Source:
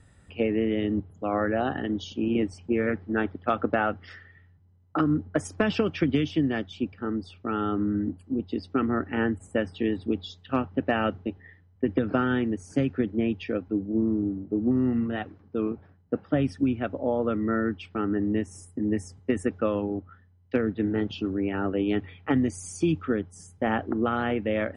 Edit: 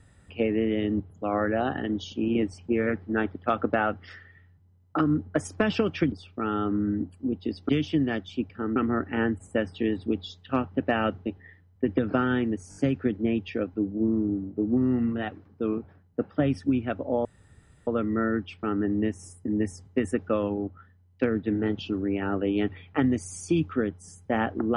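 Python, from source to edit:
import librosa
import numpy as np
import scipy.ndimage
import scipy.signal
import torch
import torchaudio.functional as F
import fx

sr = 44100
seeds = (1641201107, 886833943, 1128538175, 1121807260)

y = fx.edit(x, sr, fx.move(start_s=6.12, length_s=1.07, to_s=8.76),
    fx.stutter(start_s=12.7, slice_s=0.02, count=4),
    fx.insert_room_tone(at_s=17.19, length_s=0.62), tone=tone)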